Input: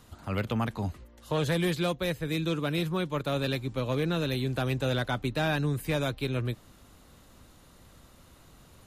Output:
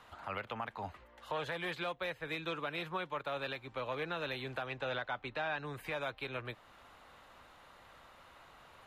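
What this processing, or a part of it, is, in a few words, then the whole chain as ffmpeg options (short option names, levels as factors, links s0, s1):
DJ mixer with the lows and highs turned down: -filter_complex "[0:a]acrossover=split=570 3200:gain=0.126 1 0.126[s0][s1][s2];[s0][s1][s2]amix=inputs=3:normalize=0,alimiter=level_in=2.82:limit=0.0631:level=0:latency=1:release=436,volume=0.355,equalizer=f=850:w=5.4:g=2,asettb=1/sr,asplit=3[s3][s4][s5];[s3]atrim=end=4.664[s6];[s4]atrim=start=4.66:end=5.65,asetpts=PTS-STARTPTS,afade=t=in:d=0.004:c=qsin,afade=t=out:st=0.986:d=0.004:c=qsin,lowpass=6600[s7];[s5]atrim=start=5.646[s8];[s6][s7]acrossfade=d=0.004:c1=hsin:c2=qsin[s9];[s9][s8]acrossfade=d=0.004:c1=qsin:c2=hsin,volume=1.78"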